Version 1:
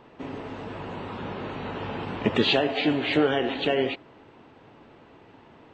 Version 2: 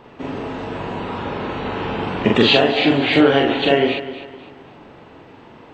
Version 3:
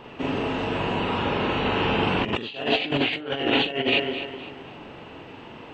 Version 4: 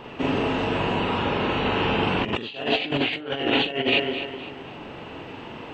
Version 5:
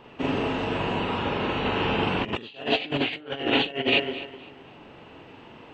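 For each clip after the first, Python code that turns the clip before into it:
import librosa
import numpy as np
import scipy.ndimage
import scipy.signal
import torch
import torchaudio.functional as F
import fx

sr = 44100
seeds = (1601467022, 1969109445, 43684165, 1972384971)

y1 = fx.doubler(x, sr, ms=43.0, db=-2)
y1 = fx.echo_feedback(y1, sr, ms=255, feedback_pct=35, wet_db=-13.5)
y1 = y1 * 10.0 ** (6.5 / 20.0)
y2 = fx.peak_eq(y1, sr, hz=2800.0, db=8.0, octaves=0.42)
y2 = fx.over_compress(y2, sr, threshold_db=-19.0, ratio=-0.5)
y2 = fx.end_taper(y2, sr, db_per_s=230.0)
y2 = y2 * 10.0 ** (-3.5 / 20.0)
y3 = fx.rider(y2, sr, range_db=4, speed_s=2.0)
y4 = fx.upward_expand(y3, sr, threshold_db=-36.0, expansion=1.5)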